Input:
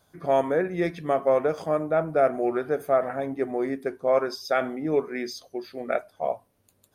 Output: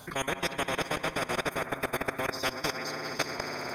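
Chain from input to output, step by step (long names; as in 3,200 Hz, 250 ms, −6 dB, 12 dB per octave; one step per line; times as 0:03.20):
on a send: echo that builds up and dies away 110 ms, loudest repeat 5, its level −11 dB
on the sum: output level in coarse steps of 23 dB
phase-vocoder stretch with locked phases 0.54×
every bin compressed towards the loudest bin 4 to 1
level +2 dB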